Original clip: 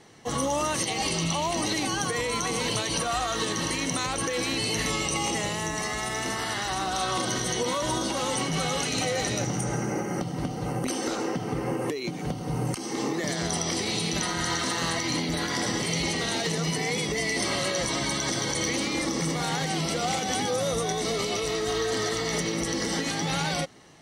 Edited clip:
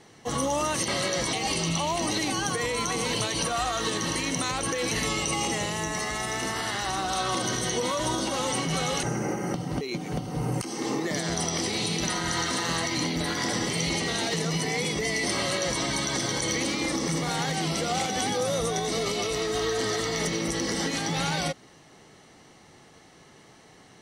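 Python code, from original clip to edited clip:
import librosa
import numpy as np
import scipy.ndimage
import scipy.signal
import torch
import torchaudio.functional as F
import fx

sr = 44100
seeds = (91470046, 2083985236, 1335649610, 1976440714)

y = fx.edit(x, sr, fx.cut(start_s=4.46, length_s=0.28),
    fx.cut(start_s=8.86, length_s=0.84),
    fx.cut(start_s=10.48, length_s=1.46),
    fx.duplicate(start_s=17.5, length_s=0.45, to_s=0.88), tone=tone)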